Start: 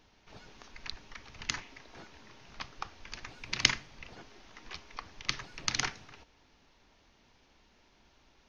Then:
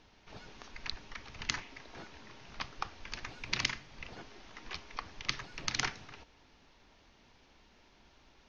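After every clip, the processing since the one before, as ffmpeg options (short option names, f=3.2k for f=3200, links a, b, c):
-af "lowpass=6.9k,alimiter=limit=-13dB:level=0:latency=1:release=351,volume=2dB"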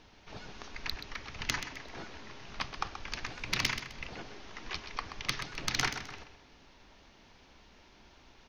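-filter_complex "[0:a]asoftclip=type=tanh:threshold=-20.5dB,asplit=2[a][b];[b]aecho=0:1:129|258|387:0.316|0.0885|0.0248[c];[a][c]amix=inputs=2:normalize=0,volume=4dB"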